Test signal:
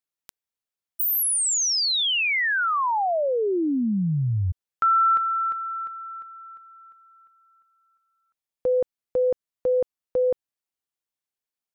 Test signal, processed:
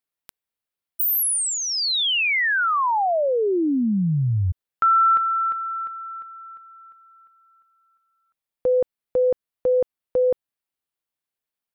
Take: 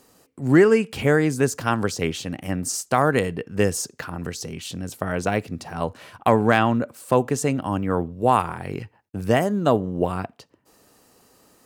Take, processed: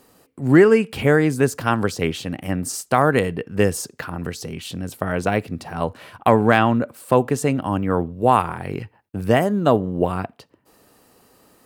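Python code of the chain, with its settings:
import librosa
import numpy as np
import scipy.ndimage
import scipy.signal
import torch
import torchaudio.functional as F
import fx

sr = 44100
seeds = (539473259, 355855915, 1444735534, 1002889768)

y = fx.peak_eq(x, sr, hz=6400.0, db=-6.0, octaves=0.8)
y = y * 10.0 ** (2.5 / 20.0)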